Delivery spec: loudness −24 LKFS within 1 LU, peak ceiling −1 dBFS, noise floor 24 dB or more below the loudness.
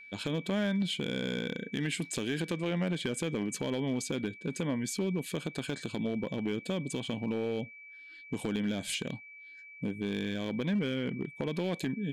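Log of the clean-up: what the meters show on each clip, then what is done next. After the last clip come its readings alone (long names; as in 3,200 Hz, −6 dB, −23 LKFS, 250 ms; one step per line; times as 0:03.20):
share of clipped samples 1.1%; peaks flattened at −25.0 dBFS; interfering tone 2,300 Hz; level of the tone −48 dBFS; integrated loudness −34.0 LKFS; sample peak −25.0 dBFS; target loudness −24.0 LKFS
→ clipped peaks rebuilt −25 dBFS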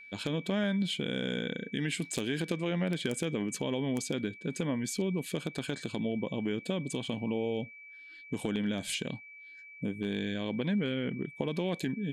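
share of clipped samples 0.0%; interfering tone 2,300 Hz; level of the tone −48 dBFS
→ notch filter 2,300 Hz, Q 30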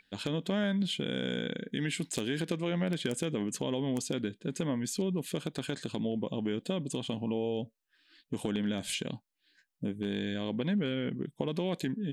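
interfering tone none found; integrated loudness −34.0 LKFS; sample peak −16.0 dBFS; target loudness −24.0 LKFS
→ level +10 dB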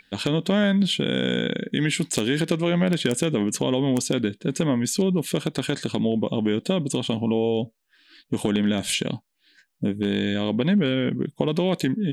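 integrated loudness −24.0 LKFS; sample peak −6.0 dBFS; background noise floor −70 dBFS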